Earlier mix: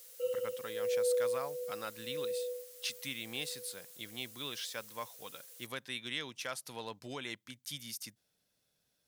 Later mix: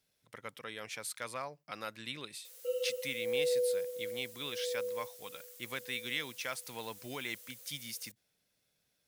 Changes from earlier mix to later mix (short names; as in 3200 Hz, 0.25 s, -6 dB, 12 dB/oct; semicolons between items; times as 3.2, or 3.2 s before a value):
speech: add bell 2200 Hz +5.5 dB 0.42 oct; background: entry +2.45 s